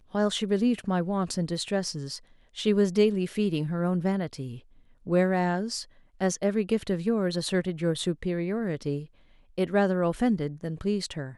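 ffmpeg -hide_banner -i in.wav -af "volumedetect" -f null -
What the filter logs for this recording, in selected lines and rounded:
mean_volume: -27.6 dB
max_volume: -10.4 dB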